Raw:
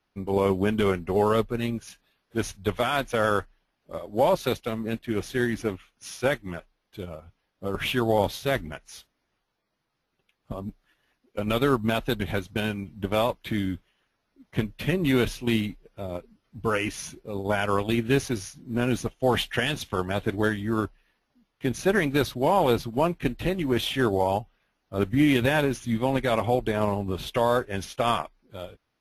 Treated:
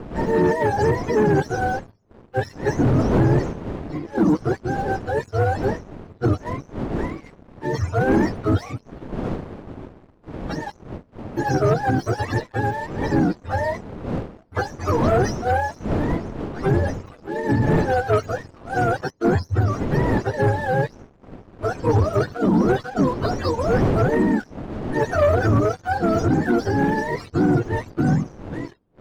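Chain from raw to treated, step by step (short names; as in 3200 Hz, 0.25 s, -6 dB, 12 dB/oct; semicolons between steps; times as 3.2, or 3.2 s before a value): spectrum mirrored in octaves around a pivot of 420 Hz; wind noise 360 Hz -36 dBFS; sample leveller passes 2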